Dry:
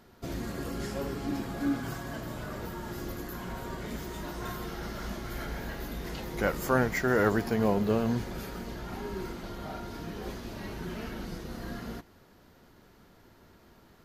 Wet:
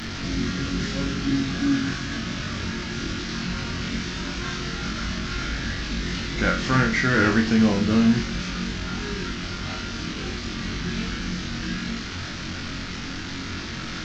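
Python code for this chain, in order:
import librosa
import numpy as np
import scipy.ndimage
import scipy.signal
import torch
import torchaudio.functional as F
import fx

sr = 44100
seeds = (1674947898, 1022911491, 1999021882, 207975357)

y = fx.delta_mod(x, sr, bps=32000, step_db=-34.5)
y = fx.band_shelf(y, sr, hz=630.0, db=-10.5, octaves=1.7)
y = fx.room_flutter(y, sr, wall_m=3.8, rt60_s=0.34)
y = y * librosa.db_to_amplitude(8.0)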